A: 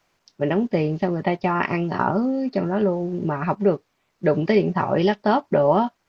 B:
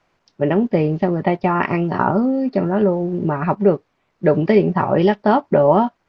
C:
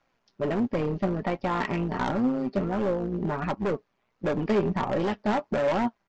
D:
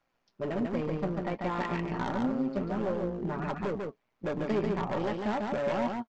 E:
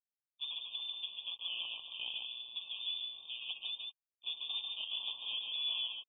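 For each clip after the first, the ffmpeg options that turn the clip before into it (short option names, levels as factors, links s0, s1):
-af "aemphasis=mode=reproduction:type=75kf,volume=1.68"
-af "tremolo=f=120:d=0.621,aresample=16000,asoftclip=type=hard:threshold=0.133,aresample=44100,flanger=delay=3.6:depth=1.5:regen=60:speed=1.4:shape=sinusoidal"
-af "aecho=1:1:143:0.668,volume=0.501"
-af "acrusher=bits=7:mix=0:aa=0.5,lowpass=f=3400:t=q:w=0.5098,lowpass=f=3400:t=q:w=0.6013,lowpass=f=3400:t=q:w=0.9,lowpass=f=3400:t=q:w=2.563,afreqshift=-4000,afftfilt=real='re*eq(mod(floor(b*sr/1024/1200),2),0)':imag='im*eq(mod(floor(b*sr/1024/1200),2),0)':win_size=1024:overlap=0.75,volume=0.501"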